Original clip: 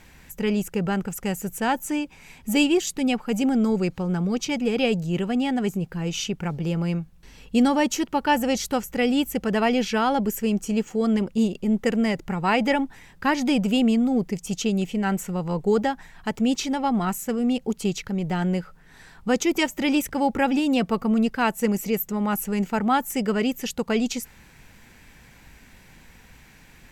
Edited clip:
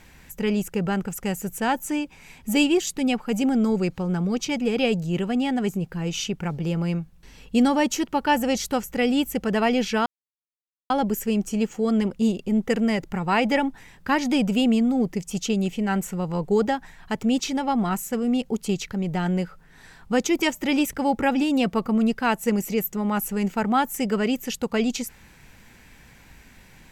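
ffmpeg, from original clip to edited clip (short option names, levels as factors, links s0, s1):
-filter_complex "[0:a]asplit=2[s0][s1];[s0]atrim=end=10.06,asetpts=PTS-STARTPTS,afade=t=out:st=10.056:d=0.004:c=hsin,apad=pad_dur=0.84[s2];[s1]atrim=start=10.06,asetpts=PTS-STARTPTS,afade=t=in:d=0.004:c=hsin[s3];[s2][s3]concat=n=2:v=0:a=1"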